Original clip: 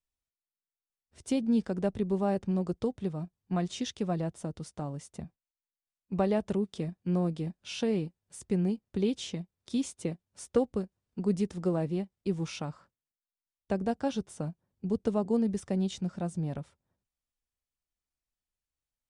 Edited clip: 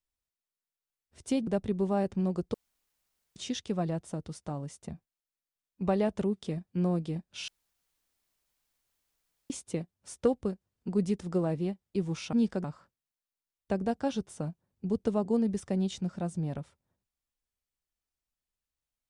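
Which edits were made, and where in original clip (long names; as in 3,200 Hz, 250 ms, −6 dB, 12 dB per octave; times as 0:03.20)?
0:01.47–0:01.78: move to 0:12.64
0:02.85–0:03.67: fill with room tone
0:07.79–0:09.81: fill with room tone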